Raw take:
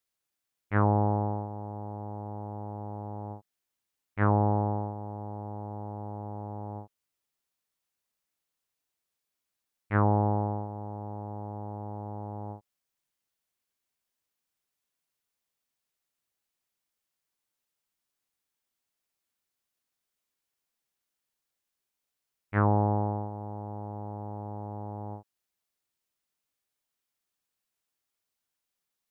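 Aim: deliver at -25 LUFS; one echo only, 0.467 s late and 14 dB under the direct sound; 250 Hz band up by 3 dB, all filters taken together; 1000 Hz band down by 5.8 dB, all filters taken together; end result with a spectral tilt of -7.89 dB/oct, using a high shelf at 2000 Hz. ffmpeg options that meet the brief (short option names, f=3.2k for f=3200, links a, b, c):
-af "equalizer=f=250:t=o:g=4.5,equalizer=f=1k:t=o:g=-6.5,highshelf=f=2k:g=-8,aecho=1:1:467:0.2,volume=6.5dB"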